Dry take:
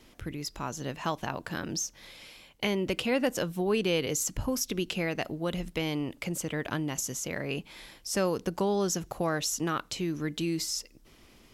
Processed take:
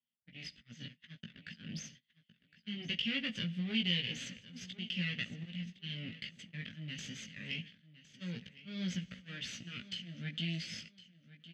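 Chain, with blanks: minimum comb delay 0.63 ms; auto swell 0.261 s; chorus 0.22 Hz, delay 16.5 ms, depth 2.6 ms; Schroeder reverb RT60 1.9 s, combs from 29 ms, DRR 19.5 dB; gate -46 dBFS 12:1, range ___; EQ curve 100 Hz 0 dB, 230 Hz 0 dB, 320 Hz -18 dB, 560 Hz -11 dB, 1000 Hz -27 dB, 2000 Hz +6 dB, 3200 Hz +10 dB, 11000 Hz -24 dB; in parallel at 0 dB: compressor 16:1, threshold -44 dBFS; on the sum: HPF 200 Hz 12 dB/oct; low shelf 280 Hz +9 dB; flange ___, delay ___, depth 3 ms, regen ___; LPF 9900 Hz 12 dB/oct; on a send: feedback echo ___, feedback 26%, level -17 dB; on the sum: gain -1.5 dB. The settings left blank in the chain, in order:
-38 dB, 0.57 Hz, 0.3 ms, -84%, 1.061 s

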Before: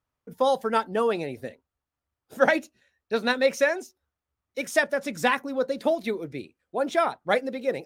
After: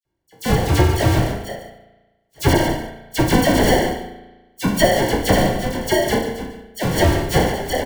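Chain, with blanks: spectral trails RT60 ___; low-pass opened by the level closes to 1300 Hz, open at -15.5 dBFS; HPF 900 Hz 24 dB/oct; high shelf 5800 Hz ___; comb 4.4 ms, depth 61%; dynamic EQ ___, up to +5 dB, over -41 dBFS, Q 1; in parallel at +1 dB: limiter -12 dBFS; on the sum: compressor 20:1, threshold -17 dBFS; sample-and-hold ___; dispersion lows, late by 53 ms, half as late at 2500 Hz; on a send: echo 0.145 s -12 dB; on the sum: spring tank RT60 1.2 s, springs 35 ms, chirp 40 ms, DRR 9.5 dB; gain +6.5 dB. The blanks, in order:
0.51 s, +9 dB, 7400 Hz, 35×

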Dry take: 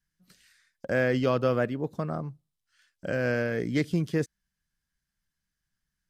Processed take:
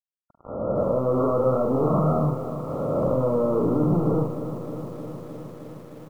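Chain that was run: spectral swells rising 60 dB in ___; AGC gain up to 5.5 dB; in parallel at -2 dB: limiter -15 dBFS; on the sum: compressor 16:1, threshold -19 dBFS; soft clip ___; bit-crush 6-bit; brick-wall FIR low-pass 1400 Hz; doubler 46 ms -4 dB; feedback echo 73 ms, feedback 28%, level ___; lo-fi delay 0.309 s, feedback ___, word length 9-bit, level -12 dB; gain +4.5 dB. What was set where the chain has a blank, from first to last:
1.06 s, -24.5 dBFS, -14 dB, 80%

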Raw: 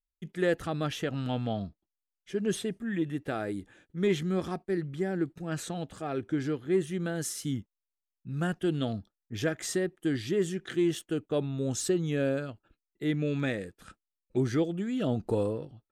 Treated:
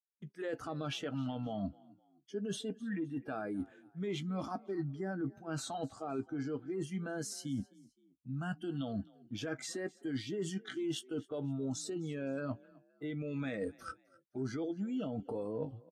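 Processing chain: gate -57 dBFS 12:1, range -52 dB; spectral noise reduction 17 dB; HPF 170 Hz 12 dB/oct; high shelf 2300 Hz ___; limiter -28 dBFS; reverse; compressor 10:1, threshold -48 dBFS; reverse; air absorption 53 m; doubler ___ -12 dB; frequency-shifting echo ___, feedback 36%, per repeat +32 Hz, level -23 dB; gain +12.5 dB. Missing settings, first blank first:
-3 dB, 15 ms, 0.259 s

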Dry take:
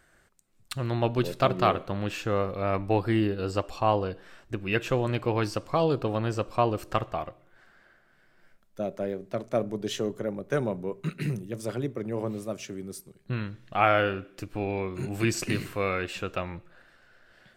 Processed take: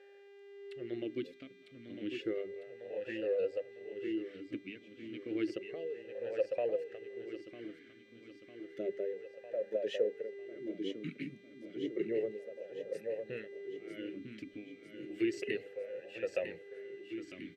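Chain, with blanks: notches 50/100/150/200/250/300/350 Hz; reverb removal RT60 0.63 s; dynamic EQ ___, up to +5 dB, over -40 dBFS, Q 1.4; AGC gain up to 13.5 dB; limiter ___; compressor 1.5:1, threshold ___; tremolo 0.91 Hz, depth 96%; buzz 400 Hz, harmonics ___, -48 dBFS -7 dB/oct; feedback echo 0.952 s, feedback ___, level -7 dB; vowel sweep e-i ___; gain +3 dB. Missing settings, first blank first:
550 Hz, -8 dBFS, -39 dBFS, 21, 55%, 0.31 Hz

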